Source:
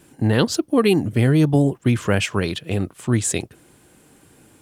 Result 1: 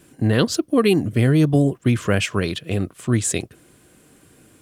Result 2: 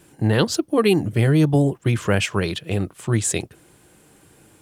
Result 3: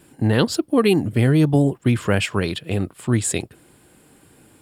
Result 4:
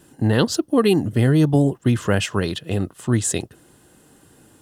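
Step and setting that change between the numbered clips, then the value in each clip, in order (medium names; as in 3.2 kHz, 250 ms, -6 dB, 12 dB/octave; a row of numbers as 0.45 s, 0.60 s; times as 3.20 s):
band-stop, frequency: 860 Hz, 250 Hz, 6.1 kHz, 2.3 kHz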